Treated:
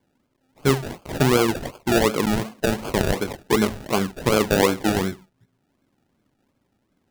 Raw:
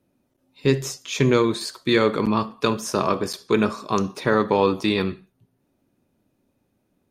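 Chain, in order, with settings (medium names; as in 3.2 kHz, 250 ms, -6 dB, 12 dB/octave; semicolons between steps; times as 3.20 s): 1.94–2.78 s: low-pass 2.1 kHz 6 dB/octave; decimation with a swept rate 33×, swing 60% 2.7 Hz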